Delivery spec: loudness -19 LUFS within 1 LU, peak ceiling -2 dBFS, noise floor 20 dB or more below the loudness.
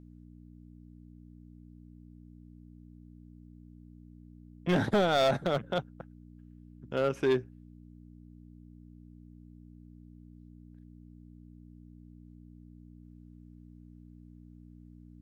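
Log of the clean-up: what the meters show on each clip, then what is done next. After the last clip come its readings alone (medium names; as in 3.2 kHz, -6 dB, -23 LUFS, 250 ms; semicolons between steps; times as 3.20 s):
clipped samples 0.4%; clipping level -20.0 dBFS; hum 60 Hz; highest harmonic 300 Hz; hum level -49 dBFS; loudness -29.5 LUFS; peak level -20.0 dBFS; loudness target -19.0 LUFS
-> clip repair -20 dBFS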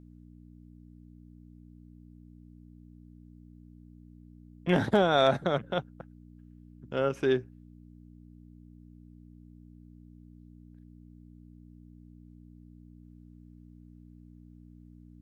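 clipped samples 0.0%; hum 60 Hz; highest harmonic 300 Hz; hum level -49 dBFS
-> de-hum 60 Hz, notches 5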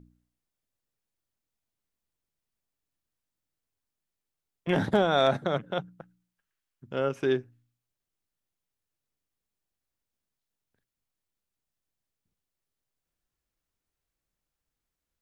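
hum not found; loudness -27.5 LUFS; peak level -11.0 dBFS; loudness target -19.0 LUFS
-> trim +8.5 dB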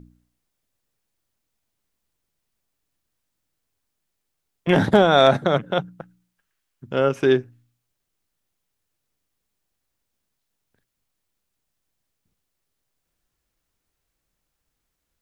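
loudness -19.5 LUFS; peak level -2.5 dBFS; noise floor -79 dBFS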